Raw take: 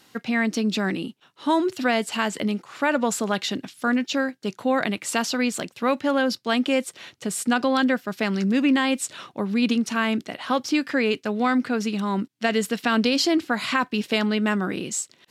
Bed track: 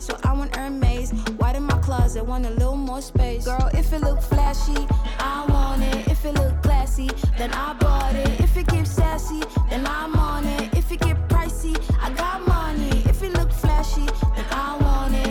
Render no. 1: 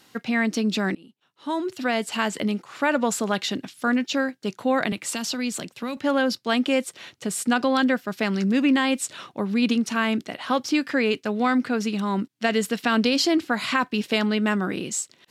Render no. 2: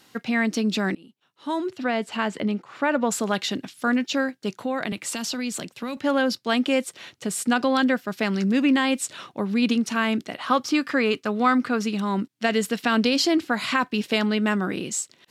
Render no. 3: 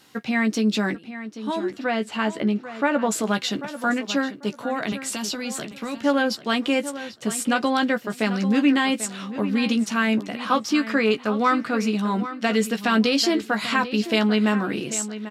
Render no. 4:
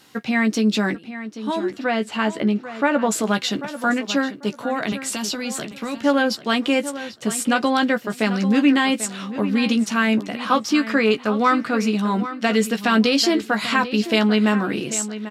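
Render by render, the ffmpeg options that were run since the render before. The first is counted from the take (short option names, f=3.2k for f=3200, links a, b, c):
-filter_complex "[0:a]asettb=1/sr,asplit=3[a][b][c];[a]atrim=end=4.924[d];[b]atrim=start=4.92:end=5.97,asetpts=PTS-STARTPTS,afade=t=in:d=0.004:c=qsin,afade=t=out:st=1.046:d=0.004:c=qsin,acrossover=split=240|3000[e][f][g];[f]acompressor=threshold=-32dB:ratio=4:attack=3.2:release=140:knee=2.83:detection=peak[h];[e][h][g]amix=inputs=3:normalize=0[i];[c]atrim=start=5.966[j];[d][i]acrossfade=d=0.004:c1=hsin:c2=qsin[k];[k][j]acrossfade=d=0.004:c1=qsin:c2=hsin,asplit=2[l][m];[l]atrim=end=0.95,asetpts=PTS-STARTPTS,afade=t=out:st=0.946:d=0.004:c=hsin:silence=0.0630957[n];[m]atrim=start=0.95,asetpts=PTS-STARTPTS,afade=t=in:d=1.28:silence=0.0630957[o];[n][o]concat=n=2:v=0:a=1"
-filter_complex "[0:a]asplit=3[a][b][c];[a]afade=t=out:st=1.68:d=0.02[d];[b]lowpass=f=2.4k:p=1,afade=t=in:st=1.68:d=0.02,afade=t=out:st=3.1:d=0.02[e];[c]afade=t=in:st=3.1:d=0.02[f];[d][e][f]amix=inputs=3:normalize=0,asettb=1/sr,asplit=3[g][h][i];[g]atrim=end=4.504[j];[h]atrim=start=4.5:end=6.03,asetpts=PTS-STARTPTS,afade=t=in:d=0.004:c=qsin,afade=t=out:st=1.526:d=0.004:c=qsin,acompressor=threshold=-25dB:ratio=2:attack=3.2:release=140:knee=1:detection=peak[k];[i]atrim=start=6.026[l];[j][k]acrossfade=d=0.004:c1=hsin:c2=qsin[m];[m][l]acrossfade=d=0.004:c1=qsin:c2=hsin,asettb=1/sr,asplit=3[n][o][p];[n]atrim=end=10.384[q];[o]atrim=start=10.38:end=11.84,asetpts=PTS-STARTPTS,afade=t=in:d=0.004:c=qsin,afade=t=out:st=1.456:d=0.004:c=qsin,equalizer=f=1.2k:w=4:g=7.5[r];[p]atrim=start=11.836[s];[q][r]acrossfade=d=0.004:c1=hsin:c2=qsin[t];[t][s]acrossfade=d=0.004:c1=qsin:c2=hsin"
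-filter_complex "[0:a]asplit=2[a][b];[b]adelay=14,volume=-7dB[c];[a][c]amix=inputs=2:normalize=0,asplit=2[d][e];[e]adelay=792,lowpass=f=4.1k:p=1,volume=-12.5dB,asplit=2[f][g];[g]adelay=792,lowpass=f=4.1k:p=1,volume=0.24,asplit=2[h][i];[i]adelay=792,lowpass=f=4.1k:p=1,volume=0.24[j];[d][f][h][j]amix=inputs=4:normalize=0"
-af "volume=2.5dB"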